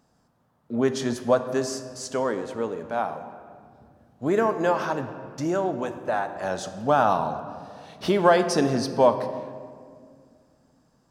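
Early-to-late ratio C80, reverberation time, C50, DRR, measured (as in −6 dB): 11.0 dB, 2.1 s, 10.0 dB, 8.5 dB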